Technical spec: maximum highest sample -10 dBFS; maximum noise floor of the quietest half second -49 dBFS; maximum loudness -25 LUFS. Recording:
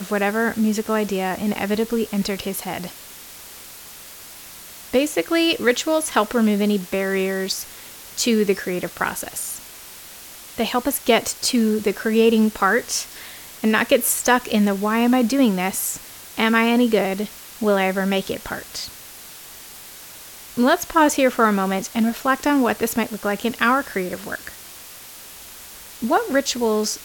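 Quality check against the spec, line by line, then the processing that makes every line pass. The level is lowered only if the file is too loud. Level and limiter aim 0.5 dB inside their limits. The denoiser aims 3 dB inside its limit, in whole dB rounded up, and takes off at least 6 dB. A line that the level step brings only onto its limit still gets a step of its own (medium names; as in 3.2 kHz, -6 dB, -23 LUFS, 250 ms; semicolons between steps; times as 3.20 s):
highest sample -4.5 dBFS: fail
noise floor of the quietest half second -40 dBFS: fail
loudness -20.5 LUFS: fail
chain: noise reduction 7 dB, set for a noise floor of -40 dBFS; trim -5 dB; peak limiter -10.5 dBFS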